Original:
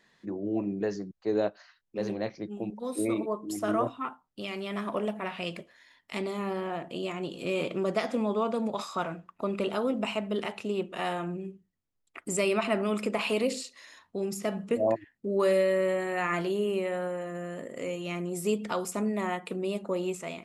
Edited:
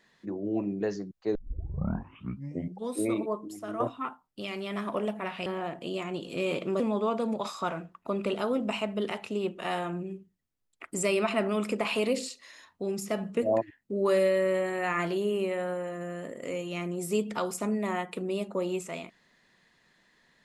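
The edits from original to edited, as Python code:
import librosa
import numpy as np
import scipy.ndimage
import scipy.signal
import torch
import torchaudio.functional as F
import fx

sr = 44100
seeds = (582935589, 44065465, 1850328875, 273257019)

y = fx.edit(x, sr, fx.tape_start(start_s=1.35, length_s=1.6),
    fx.clip_gain(start_s=3.48, length_s=0.32, db=-8.5),
    fx.cut(start_s=5.46, length_s=1.09),
    fx.cut(start_s=7.89, length_s=0.25), tone=tone)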